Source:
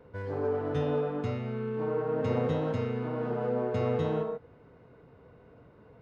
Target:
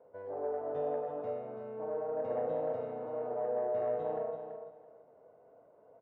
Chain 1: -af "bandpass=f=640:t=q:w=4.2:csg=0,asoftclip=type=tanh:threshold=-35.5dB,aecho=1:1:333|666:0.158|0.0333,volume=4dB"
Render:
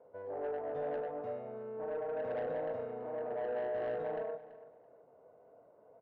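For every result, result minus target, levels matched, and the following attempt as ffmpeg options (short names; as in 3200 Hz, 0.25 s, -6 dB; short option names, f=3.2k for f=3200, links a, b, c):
soft clip: distortion +13 dB; echo-to-direct -7.5 dB
-af "bandpass=f=640:t=q:w=4.2:csg=0,asoftclip=type=tanh:threshold=-26.5dB,aecho=1:1:333|666:0.158|0.0333,volume=4dB"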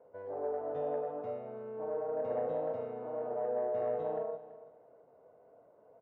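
echo-to-direct -7.5 dB
-af "bandpass=f=640:t=q:w=4.2:csg=0,asoftclip=type=tanh:threshold=-26.5dB,aecho=1:1:333|666|999:0.376|0.0789|0.0166,volume=4dB"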